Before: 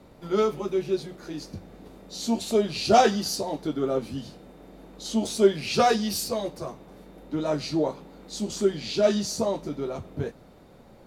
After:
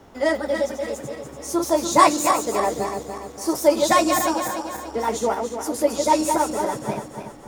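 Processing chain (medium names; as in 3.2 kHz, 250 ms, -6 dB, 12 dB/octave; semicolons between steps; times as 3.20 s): backward echo that repeats 214 ms, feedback 67%, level -5.5 dB; wide varispeed 1.48×; trim +3 dB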